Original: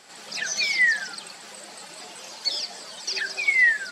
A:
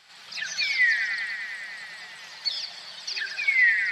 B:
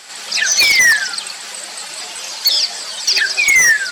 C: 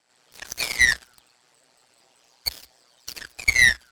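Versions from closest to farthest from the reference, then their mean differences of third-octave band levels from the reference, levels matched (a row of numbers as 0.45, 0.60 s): B, A, C; 4.5, 6.0, 12.0 dB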